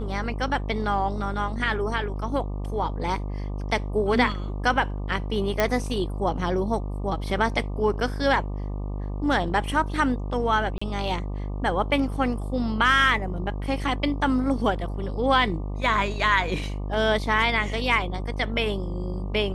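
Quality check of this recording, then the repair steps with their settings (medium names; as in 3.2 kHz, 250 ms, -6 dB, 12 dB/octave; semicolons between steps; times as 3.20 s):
buzz 50 Hz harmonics 24 -30 dBFS
5.60 s: pop -8 dBFS
10.78–10.81 s: dropout 35 ms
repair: de-click; de-hum 50 Hz, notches 24; interpolate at 10.78 s, 35 ms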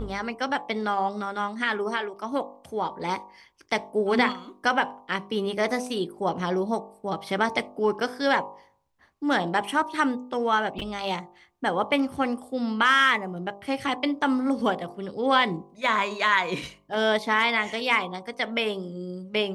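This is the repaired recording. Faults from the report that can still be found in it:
nothing left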